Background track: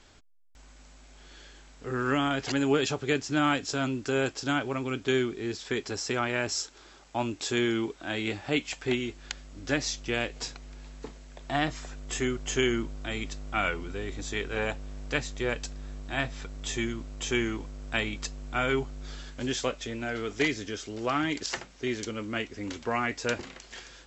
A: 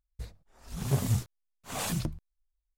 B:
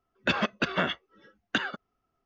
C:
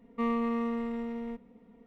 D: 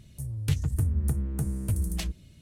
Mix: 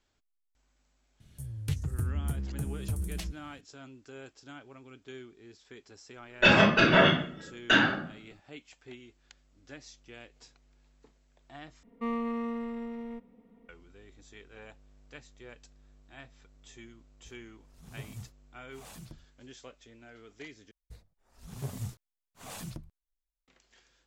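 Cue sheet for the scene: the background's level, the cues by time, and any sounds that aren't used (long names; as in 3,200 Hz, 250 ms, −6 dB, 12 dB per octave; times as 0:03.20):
background track −19.5 dB
0:01.20: mix in D −5.5 dB
0:06.15: mix in B −8 dB + rectangular room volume 71 cubic metres, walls mixed, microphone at 4.1 metres
0:11.83: overwrite with C −3 dB
0:17.06: mix in A −16.5 dB
0:20.71: overwrite with A −10 dB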